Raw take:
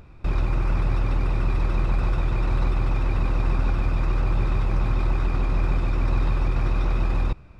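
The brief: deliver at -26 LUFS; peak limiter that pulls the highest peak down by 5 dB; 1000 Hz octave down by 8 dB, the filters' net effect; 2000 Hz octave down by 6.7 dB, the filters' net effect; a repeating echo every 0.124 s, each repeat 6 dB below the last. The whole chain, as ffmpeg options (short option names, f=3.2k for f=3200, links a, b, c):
-af "equalizer=f=1k:t=o:g=-8.5,equalizer=f=2k:t=o:g=-6.5,alimiter=limit=-16dB:level=0:latency=1,aecho=1:1:124|248|372|496|620|744:0.501|0.251|0.125|0.0626|0.0313|0.0157,volume=-2dB"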